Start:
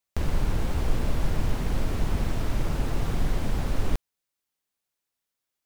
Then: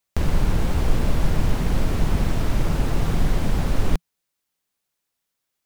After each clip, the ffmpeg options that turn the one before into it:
ffmpeg -i in.wav -af "equalizer=frequency=170:width_type=o:width=0.4:gain=3.5,volume=5dB" out.wav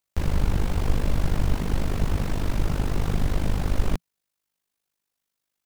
ffmpeg -i in.wav -af "tremolo=f=50:d=0.788" out.wav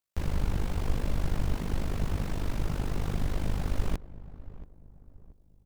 ffmpeg -i in.wav -filter_complex "[0:a]asplit=2[link_01][link_02];[link_02]adelay=681,lowpass=frequency=900:poles=1,volume=-16dB,asplit=2[link_03][link_04];[link_04]adelay=681,lowpass=frequency=900:poles=1,volume=0.41,asplit=2[link_05][link_06];[link_06]adelay=681,lowpass=frequency=900:poles=1,volume=0.41,asplit=2[link_07][link_08];[link_08]adelay=681,lowpass=frequency=900:poles=1,volume=0.41[link_09];[link_01][link_03][link_05][link_07][link_09]amix=inputs=5:normalize=0,volume=-6dB" out.wav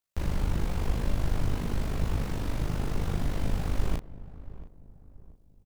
ffmpeg -i in.wav -filter_complex "[0:a]asplit=2[link_01][link_02];[link_02]adelay=35,volume=-5dB[link_03];[link_01][link_03]amix=inputs=2:normalize=0" out.wav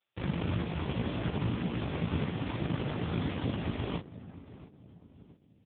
ffmpeg -i in.wav -af "acrusher=bits=8:mode=log:mix=0:aa=0.000001,aemphasis=mode=production:type=75fm,volume=6dB" -ar 8000 -c:a libopencore_amrnb -b:a 4750 out.amr

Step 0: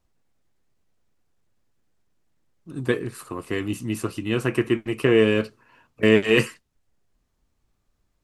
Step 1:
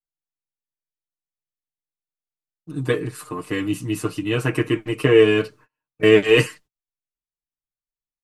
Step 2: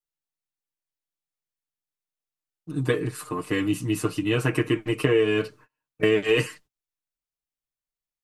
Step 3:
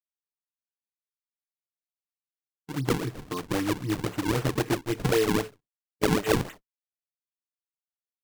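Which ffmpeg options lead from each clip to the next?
ffmpeg -i in.wav -af "agate=range=-34dB:threshold=-48dB:ratio=16:detection=peak,aecho=1:1:6.6:0.95" out.wav
ffmpeg -i in.wav -af "acompressor=threshold=-18dB:ratio=4" out.wav
ffmpeg -i in.wav -af "agate=range=-34dB:threshold=-41dB:ratio=16:detection=peak,acrusher=samples=41:mix=1:aa=0.000001:lfo=1:lforange=65.6:lforate=3.8,volume=-3dB" out.wav

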